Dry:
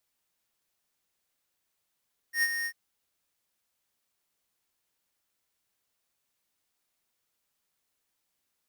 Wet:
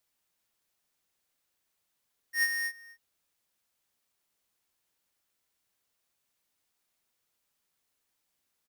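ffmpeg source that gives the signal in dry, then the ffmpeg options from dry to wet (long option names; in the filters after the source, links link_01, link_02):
-f lavfi -i "aevalsrc='0.0631*(2*lt(mod(1850*t,1),0.5)-1)':duration=0.395:sample_rate=44100,afade=type=in:duration=0.098,afade=type=out:start_time=0.098:duration=0.045:silence=0.398,afade=type=out:start_time=0.33:duration=0.065"
-filter_complex "[0:a]asplit=2[link_01][link_02];[link_02]adelay=250.7,volume=-18dB,highshelf=frequency=4000:gain=-5.64[link_03];[link_01][link_03]amix=inputs=2:normalize=0"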